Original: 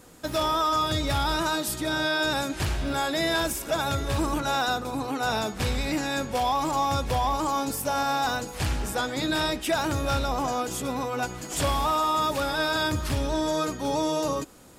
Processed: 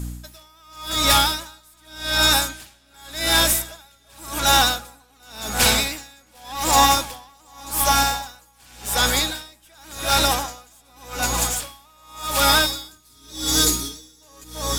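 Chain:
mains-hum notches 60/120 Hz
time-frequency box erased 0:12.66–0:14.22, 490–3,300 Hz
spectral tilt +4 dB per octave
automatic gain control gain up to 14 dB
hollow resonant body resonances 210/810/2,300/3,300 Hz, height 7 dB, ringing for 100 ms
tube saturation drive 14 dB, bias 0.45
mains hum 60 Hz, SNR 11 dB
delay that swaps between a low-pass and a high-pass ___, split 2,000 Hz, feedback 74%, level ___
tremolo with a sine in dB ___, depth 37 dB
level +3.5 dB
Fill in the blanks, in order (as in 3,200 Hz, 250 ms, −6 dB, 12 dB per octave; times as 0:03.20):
335 ms, −7 dB, 0.88 Hz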